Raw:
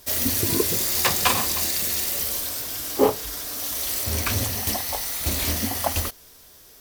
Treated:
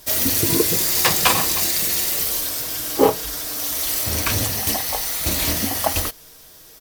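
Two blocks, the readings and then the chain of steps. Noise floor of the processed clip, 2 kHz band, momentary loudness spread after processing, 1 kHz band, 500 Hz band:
-45 dBFS, +4.0 dB, 8 LU, +3.5 dB, +3.5 dB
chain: comb 6.3 ms, depth 39%; trim +3.5 dB

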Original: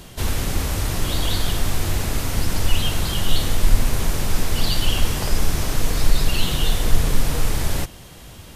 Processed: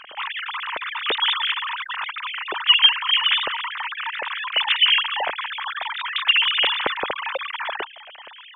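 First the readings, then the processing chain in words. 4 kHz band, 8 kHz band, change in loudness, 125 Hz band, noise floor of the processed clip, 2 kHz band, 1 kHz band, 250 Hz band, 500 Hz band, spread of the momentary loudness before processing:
+9.0 dB, under -40 dB, +3.0 dB, under -35 dB, -43 dBFS, +9.0 dB, +5.5 dB, under -15 dB, -3.5 dB, 3 LU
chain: formants replaced by sine waves; trim -7.5 dB

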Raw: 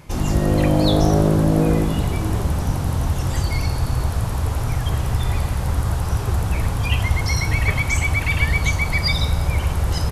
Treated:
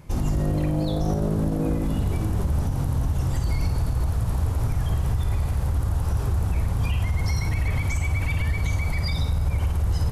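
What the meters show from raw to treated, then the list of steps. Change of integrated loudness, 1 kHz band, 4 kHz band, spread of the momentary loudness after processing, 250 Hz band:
-5.0 dB, -8.5 dB, -11.0 dB, 1 LU, -6.5 dB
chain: bass shelf 210 Hz +5.5 dB; flutter echo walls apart 9 m, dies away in 0.33 s; peak limiter -10.5 dBFS, peak gain reduction 10 dB; peaking EQ 3.2 kHz -3.5 dB 2.9 oct; trim -5 dB

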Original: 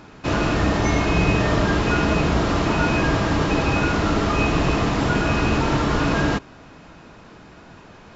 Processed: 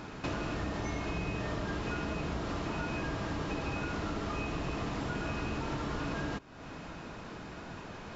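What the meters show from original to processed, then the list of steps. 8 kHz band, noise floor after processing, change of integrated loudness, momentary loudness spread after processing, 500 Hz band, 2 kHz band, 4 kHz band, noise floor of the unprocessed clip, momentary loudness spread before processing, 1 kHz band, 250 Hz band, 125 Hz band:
no reading, -46 dBFS, -16.5 dB, 9 LU, -15.5 dB, -15.5 dB, -15.5 dB, -45 dBFS, 2 LU, -15.5 dB, -15.5 dB, -15.5 dB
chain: compression 4:1, threshold -36 dBFS, peak gain reduction 18 dB

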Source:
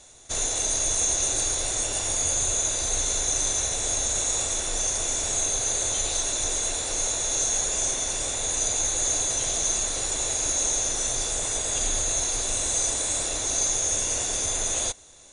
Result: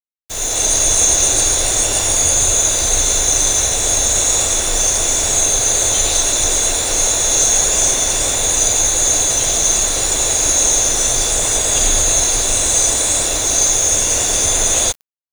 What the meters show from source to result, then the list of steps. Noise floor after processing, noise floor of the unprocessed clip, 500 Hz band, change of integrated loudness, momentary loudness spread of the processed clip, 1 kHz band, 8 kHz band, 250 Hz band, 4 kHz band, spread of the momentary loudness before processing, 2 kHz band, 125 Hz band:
-24 dBFS, -30 dBFS, +11.0 dB, +11.0 dB, 3 LU, +11.0 dB, +11.0 dB, +11.0 dB, +11.0 dB, 3 LU, +11.0 dB, +11.0 dB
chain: level rider gain up to 14 dB; bit crusher 5-bit

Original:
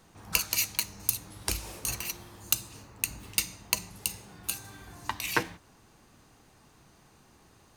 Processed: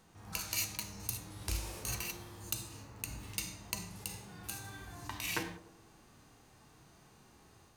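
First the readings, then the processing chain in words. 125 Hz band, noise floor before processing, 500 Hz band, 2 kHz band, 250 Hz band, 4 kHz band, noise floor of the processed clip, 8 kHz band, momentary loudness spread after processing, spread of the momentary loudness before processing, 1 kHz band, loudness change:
-1.0 dB, -60 dBFS, -6.5 dB, -8.0 dB, -3.5 dB, -8.0 dB, -62 dBFS, -8.5 dB, 10 LU, 12 LU, -8.0 dB, -8.5 dB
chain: harmonic-percussive split percussive -14 dB; band-passed feedback delay 98 ms, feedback 61%, band-pass 470 Hz, level -12 dB; level rider gain up to 3 dB; trim -1 dB

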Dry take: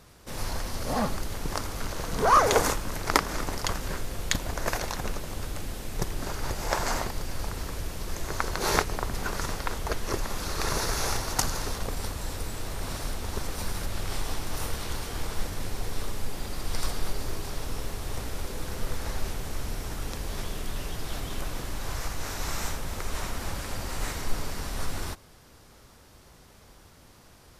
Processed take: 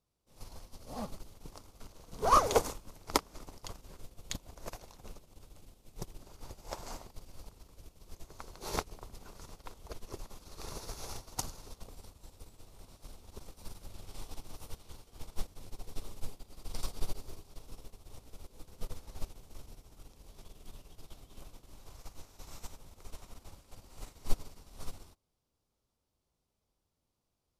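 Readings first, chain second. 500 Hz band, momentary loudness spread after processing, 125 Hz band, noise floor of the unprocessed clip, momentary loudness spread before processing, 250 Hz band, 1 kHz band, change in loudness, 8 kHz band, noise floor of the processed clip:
-8.5 dB, 18 LU, -14.5 dB, -54 dBFS, 9 LU, -12.5 dB, -8.0 dB, -7.5 dB, -12.0 dB, -83 dBFS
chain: peaking EQ 1.7 kHz -10 dB 0.72 oct; upward expansion 2.5:1, over -37 dBFS; trim +1 dB

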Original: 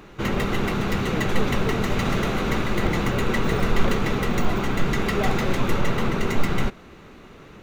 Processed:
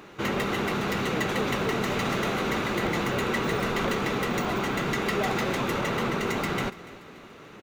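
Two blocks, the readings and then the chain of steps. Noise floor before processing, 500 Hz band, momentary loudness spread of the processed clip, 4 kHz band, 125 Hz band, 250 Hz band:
-46 dBFS, -2.0 dB, 4 LU, -1.0 dB, -7.5 dB, -4.0 dB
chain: high-pass 240 Hz 6 dB/octave; in parallel at -0.5 dB: peak limiter -20 dBFS, peak gain reduction 8.5 dB; on the sum: feedback delay 288 ms, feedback 47%, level -19 dB; trim -5.5 dB

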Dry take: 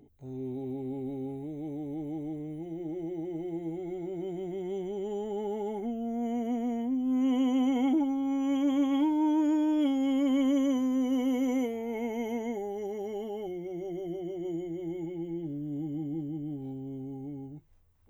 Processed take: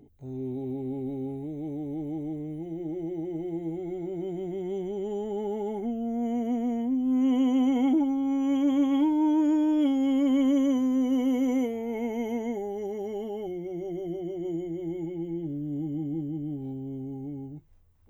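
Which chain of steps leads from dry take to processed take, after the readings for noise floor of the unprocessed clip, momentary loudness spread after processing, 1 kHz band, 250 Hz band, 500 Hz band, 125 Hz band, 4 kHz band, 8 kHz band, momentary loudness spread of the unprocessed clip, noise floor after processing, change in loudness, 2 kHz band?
-42 dBFS, 12 LU, +1.0 dB, +3.0 dB, +2.5 dB, +3.5 dB, 0.0 dB, no reading, 12 LU, -39 dBFS, +3.0 dB, 0.0 dB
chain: bass shelf 500 Hz +4 dB

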